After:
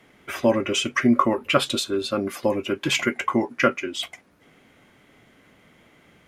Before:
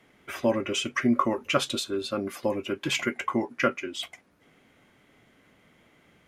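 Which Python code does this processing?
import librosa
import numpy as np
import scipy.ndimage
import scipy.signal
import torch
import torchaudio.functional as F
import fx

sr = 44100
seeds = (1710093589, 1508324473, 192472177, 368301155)

y = fx.peak_eq(x, sr, hz=6200.0, db=-14.5, octaves=0.23, at=(1.25, 1.66))
y = y * 10.0 ** (5.0 / 20.0)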